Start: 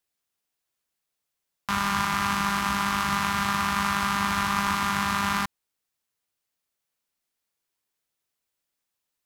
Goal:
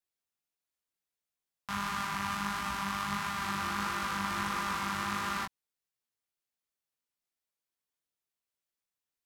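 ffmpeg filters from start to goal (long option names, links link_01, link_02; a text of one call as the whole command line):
ffmpeg -i in.wav -filter_complex "[0:a]flanger=delay=16.5:depth=5.2:speed=1.5,asettb=1/sr,asplit=3[link_01][link_02][link_03];[link_01]atrim=end=3.264[link_04];[link_02]atrim=start=3.26:end=5.44,asetpts=PTS-STARTPTS,afade=type=in:duration=0.004:curve=qsin,afade=type=out:start_time=2.176:duration=0.004:curve=qsin,asplit=6[link_05][link_06][link_07][link_08][link_09][link_10];[link_06]adelay=155,afreqshift=150,volume=-9.5dB[link_11];[link_07]adelay=310,afreqshift=300,volume=-16.8dB[link_12];[link_08]adelay=465,afreqshift=450,volume=-24.2dB[link_13];[link_09]adelay=620,afreqshift=600,volume=-31.5dB[link_14];[link_10]adelay=775,afreqshift=750,volume=-38.8dB[link_15];[link_05][link_11][link_12][link_13][link_14][link_15]amix=inputs=6:normalize=0,atrim=end_sample=96138[link_16];[link_03]atrim=start=5.436[link_17];[link_04][link_16]acrossfade=duration=0.004:curve1=hsin:curve2=qsin[link_18];[link_18][link_17]acrossfade=duration=0.004:curve1=qsin:curve2=hsin,volume=-6dB" out.wav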